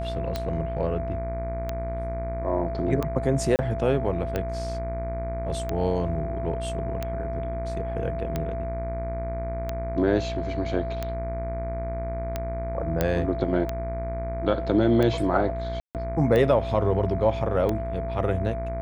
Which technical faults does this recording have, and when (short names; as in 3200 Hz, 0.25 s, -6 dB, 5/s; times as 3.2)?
buzz 60 Hz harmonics 40 -32 dBFS
tick 45 rpm -14 dBFS
tone 670 Hz -31 dBFS
3.56–3.59 gap 29 ms
13.01 pop -9 dBFS
15.8–15.95 gap 0.148 s